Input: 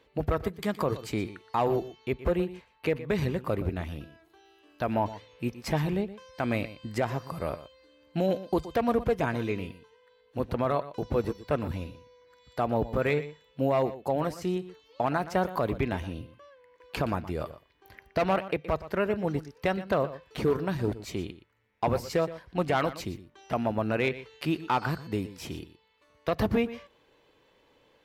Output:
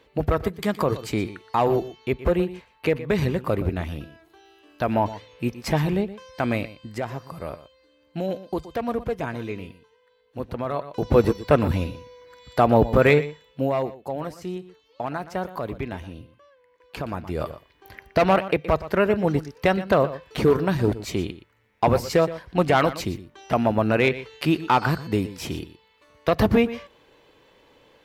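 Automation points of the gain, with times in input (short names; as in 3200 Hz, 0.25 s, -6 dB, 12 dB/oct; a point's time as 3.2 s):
6.43 s +5.5 dB
6.91 s -1 dB
10.71 s -1 dB
11.15 s +10.5 dB
13.1 s +10.5 dB
13.99 s -2 dB
17.08 s -2 dB
17.48 s +7.5 dB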